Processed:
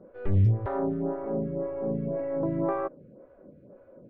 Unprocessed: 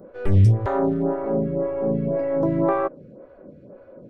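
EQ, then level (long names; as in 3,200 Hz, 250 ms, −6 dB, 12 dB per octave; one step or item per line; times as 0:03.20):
high-frequency loss of the air 300 metres
−6.5 dB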